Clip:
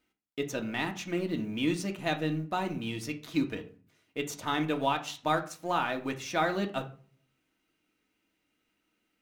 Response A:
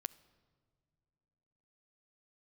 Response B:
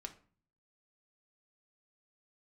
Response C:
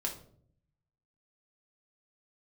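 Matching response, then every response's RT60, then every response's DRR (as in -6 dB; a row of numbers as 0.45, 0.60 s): B; not exponential, 0.45 s, 0.60 s; 16.0, 4.0, -0.5 dB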